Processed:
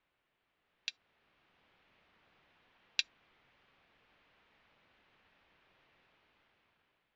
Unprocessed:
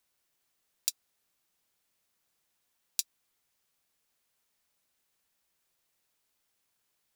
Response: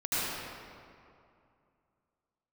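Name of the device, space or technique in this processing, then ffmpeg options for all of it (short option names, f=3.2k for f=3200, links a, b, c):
action camera in a waterproof case: -af "lowpass=f=3k:w=0.5412,lowpass=f=3k:w=1.3066,dynaudnorm=f=490:g=5:m=12dB,volume=4dB" -ar 16000 -c:a aac -b:a 64k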